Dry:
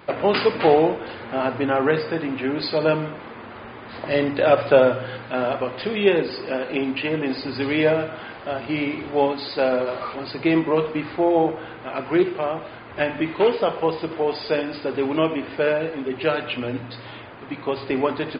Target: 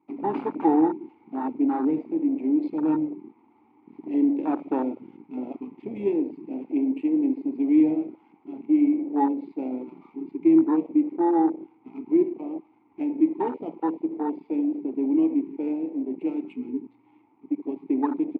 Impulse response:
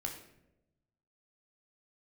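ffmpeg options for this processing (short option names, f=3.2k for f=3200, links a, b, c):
-filter_complex "[0:a]adynamicsmooth=sensitivity=4:basefreq=1k,asplit=3[a][b][c];[a]bandpass=f=300:t=q:w=8,volume=0dB[d];[b]bandpass=f=870:t=q:w=8,volume=-6dB[e];[c]bandpass=f=2.24k:t=q:w=8,volume=-9dB[f];[d][e][f]amix=inputs=3:normalize=0,afwtdn=0.0224,volume=7.5dB"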